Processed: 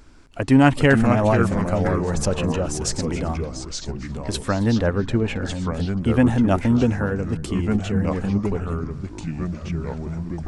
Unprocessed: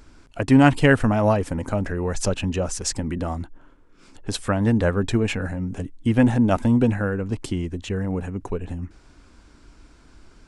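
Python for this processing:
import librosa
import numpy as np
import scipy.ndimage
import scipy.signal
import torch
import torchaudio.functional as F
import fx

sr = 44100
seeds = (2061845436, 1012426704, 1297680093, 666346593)

y = fx.lowpass(x, sr, hz=2600.0, slope=6, at=(4.81, 5.47))
y = fx.echo_pitch(y, sr, ms=331, semitones=-3, count=3, db_per_echo=-6.0)
y = y + 10.0 ** (-19.5 / 20.0) * np.pad(y, (int(271 * sr / 1000.0), 0))[:len(y)]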